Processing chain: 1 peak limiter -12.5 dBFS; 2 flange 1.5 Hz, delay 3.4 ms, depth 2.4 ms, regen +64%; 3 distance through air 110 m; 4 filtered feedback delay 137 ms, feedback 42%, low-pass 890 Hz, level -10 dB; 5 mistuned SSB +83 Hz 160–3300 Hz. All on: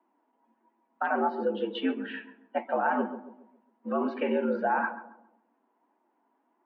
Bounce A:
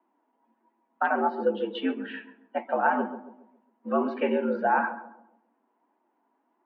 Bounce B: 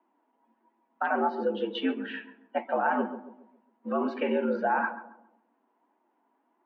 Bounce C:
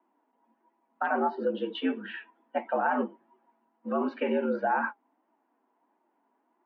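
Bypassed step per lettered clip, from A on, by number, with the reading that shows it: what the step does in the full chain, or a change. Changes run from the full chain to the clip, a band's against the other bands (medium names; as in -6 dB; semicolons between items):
1, crest factor change +2.0 dB; 3, 4 kHz band +1.5 dB; 4, momentary loudness spread change -2 LU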